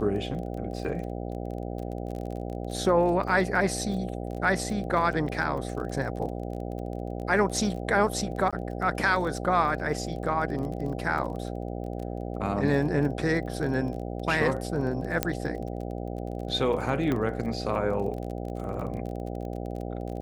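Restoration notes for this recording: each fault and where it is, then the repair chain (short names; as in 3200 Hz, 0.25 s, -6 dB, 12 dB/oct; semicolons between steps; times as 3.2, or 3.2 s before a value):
buzz 60 Hz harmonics 13 -34 dBFS
crackle 27/s -35 dBFS
8.51–8.53 gap 16 ms
15.23 pop -8 dBFS
17.12 pop -16 dBFS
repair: de-click; de-hum 60 Hz, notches 13; interpolate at 8.51, 16 ms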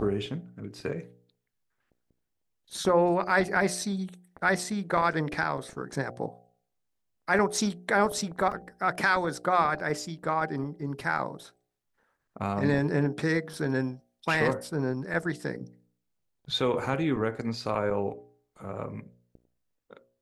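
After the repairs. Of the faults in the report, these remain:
17.12 pop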